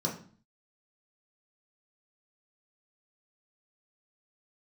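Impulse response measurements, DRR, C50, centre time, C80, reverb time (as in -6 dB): -3.0 dB, 8.5 dB, 23 ms, 13.0 dB, 0.45 s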